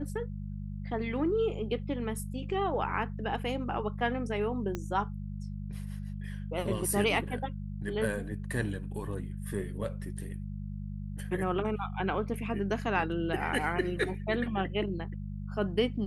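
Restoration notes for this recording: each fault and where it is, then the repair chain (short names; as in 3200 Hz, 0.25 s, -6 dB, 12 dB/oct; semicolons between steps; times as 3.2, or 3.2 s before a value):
hum 50 Hz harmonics 4 -38 dBFS
4.75 pop -20 dBFS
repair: de-click; de-hum 50 Hz, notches 4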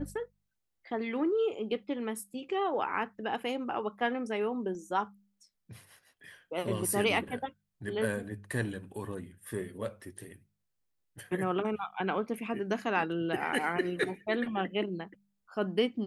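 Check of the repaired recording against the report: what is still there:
4.75 pop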